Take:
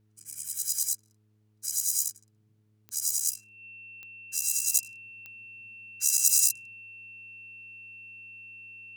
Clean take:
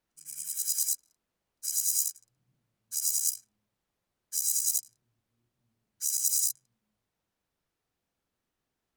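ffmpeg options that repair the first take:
-af "adeclick=t=4,bandreject=f=106.5:t=h:w=4,bandreject=f=213:t=h:w=4,bandreject=f=319.5:t=h:w=4,bandreject=f=426:t=h:w=4,bandreject=f=2700:w=30,asetnsamples=n=441:p=0,asendcmd='4.74 volume volume -5dB',volume=1"

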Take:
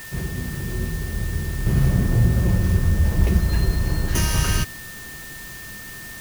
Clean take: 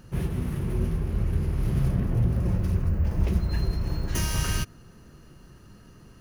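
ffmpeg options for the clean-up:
-af "bandreject=f=1800:w=30,afwtdn=0.01,asetnsamples=n=441:p=0,asendcmd='1.66 volume volume -6dB',volume=1"

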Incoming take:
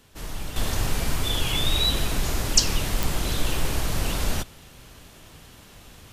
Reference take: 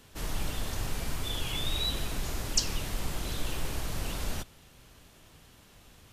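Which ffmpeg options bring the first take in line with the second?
-af "adeclick=t=4,asetnsamples=n=441:p=0,asendcmd='0.56 volume volume -8.5dB',volume=1"

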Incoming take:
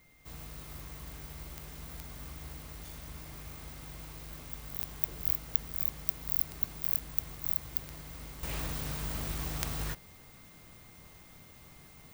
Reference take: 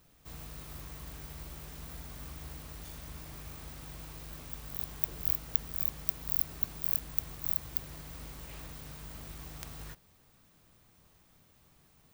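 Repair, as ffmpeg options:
-af "adeclick=t=4,bandreject=f=2100:w=30,agate=range=0.0891:threshold=0.00501,asetnsamples=n=441:p=0,asendcmd='8.43 volume volume -9.5dB',volume=1"

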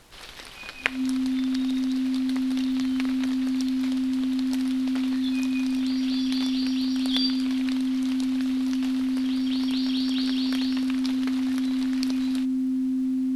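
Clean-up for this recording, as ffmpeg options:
-af "adeclick=t=4,bandreject=f=260:w=30,agate=range=0.0891:threshold=0.141"

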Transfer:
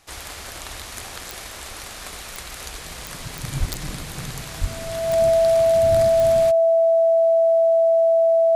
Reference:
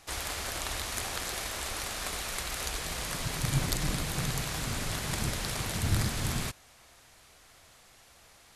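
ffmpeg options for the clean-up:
-filter_complex "[0:a]adeclick=t=4,bandreject=f=660:w=30,asplit=3[s0][s1][s2];[s0]afade=t=out:st=3.59:d=0.02[s3];[s1]highpass=f=140:w=0.5412,highpass=f=140:w=1.3066,afade=t=in:st=3.59:d=0.02,afade=t=out:st=3.71:d=0.02[s4];[s2]afade=t=in:st=3.71:d=0.02[s5];[s3][s4][s5]amix=inputs=3:normalize=0,asplit=3[s6][s7][s8];[s6]afade=t=out:st=4.6:d=0.02[s9];[s7]highpass=f=140:w=0.5412,highpass=f=140:w=1.3066,afade=t=in:st=4.6:d=0.02,afade=t=out:st=4.72:d=0.02[s10];[s8]afade=t=in:st=4.72:d=0.02[s11];[s9][s10][s11]amix=inputs=3:normalize=0"

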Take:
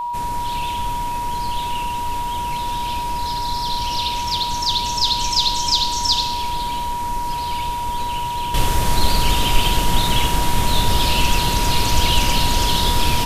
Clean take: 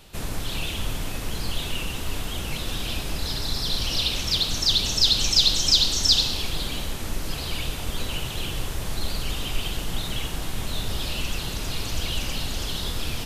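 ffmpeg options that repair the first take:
-af "bandreject=f=960:w=30,asetnsamples=n=441:p=0,asendcmd='8.54 volume volume -10.5dB',volume=1"

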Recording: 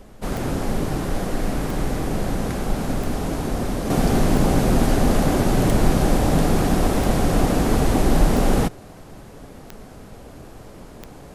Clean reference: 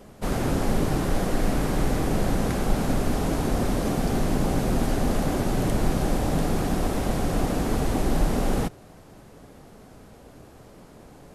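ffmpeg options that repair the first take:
-af "adeclick=t=4,agate=range=0.0891:threshold=0.0224,asetnsamples=n=441:p=0,asendcmd='3.9 volume volume -6dB',volume=1"

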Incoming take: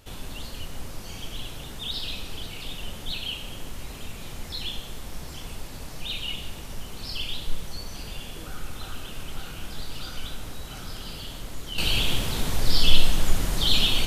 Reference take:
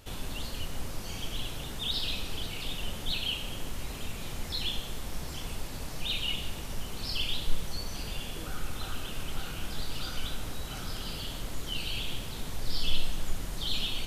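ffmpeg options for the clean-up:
-af "asetnsamples=n=441:p=0,asendcmd='11.78 volume volume -10.5dB',volume=1"

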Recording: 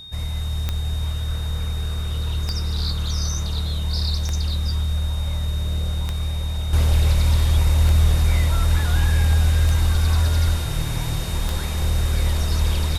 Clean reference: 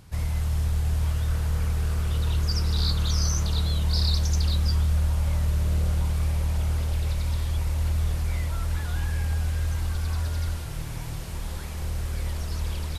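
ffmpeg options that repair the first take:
-af "adeclick=t=4,bandreject=f=3700:w=30,asetnsamples=n=441:p=0,asendcmd='6.73 volume volume -9dB',volume=1"

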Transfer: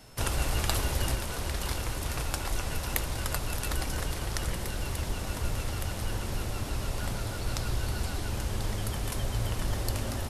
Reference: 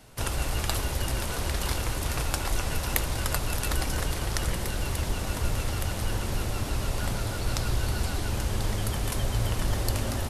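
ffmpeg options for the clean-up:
-af "bandreject=f=5300:w=30,asetnsamples=n=441:p=0,asendcmd='1.15 volume volume 3.5dB',volume=1"

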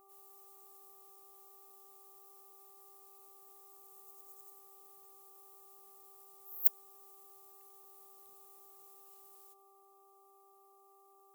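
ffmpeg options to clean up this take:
-af "bandreject=f=392.6:t=h:w=4,bandreject=f=785.2:t=h:w=4,bandreject=f=1177.8:t=h:w=4"

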